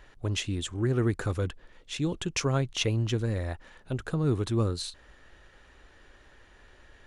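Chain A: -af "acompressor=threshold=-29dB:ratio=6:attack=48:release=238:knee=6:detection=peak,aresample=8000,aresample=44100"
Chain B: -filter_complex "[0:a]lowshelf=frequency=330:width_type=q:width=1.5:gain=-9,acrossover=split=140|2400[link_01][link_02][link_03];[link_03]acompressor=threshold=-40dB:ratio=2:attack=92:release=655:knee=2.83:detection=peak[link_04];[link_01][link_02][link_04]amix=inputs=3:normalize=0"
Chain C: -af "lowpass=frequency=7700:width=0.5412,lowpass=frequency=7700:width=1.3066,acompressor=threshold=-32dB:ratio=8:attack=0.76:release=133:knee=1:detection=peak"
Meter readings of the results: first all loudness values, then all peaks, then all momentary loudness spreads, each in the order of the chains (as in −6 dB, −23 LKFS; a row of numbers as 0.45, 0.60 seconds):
−33.5, −34.0, −38.5 LKFS; −18.5, −15.5, −23.5 dBFS; 8, 10, 20 LU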